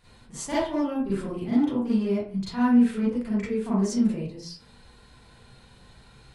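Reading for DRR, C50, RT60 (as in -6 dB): -10.0 dB, -1.5 dB, 0.45 s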